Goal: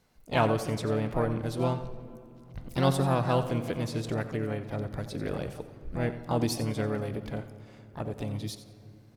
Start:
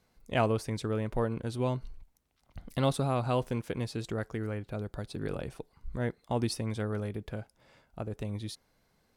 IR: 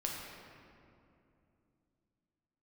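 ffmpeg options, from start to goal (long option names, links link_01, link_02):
-filter_complex "[0:a]aecho=1:1:89|178:0.224|0.047,asplit=2[link_01][link_02];[1:a]atrim=start_sample=2205[link_03];[link_02][link_03]afir=irnorm=-1:irlink=0,volume=-11.5dB[link_04];[link_01][link_04]amix=inputs=2:normalize=0,asplit=2[link_05][link_06];[link_06]asetrate=58866,aresample=44100,atempo=0.749154,volume=-7dB[link_07];[link_05][link_07]amix=inputs=2:normalize=0"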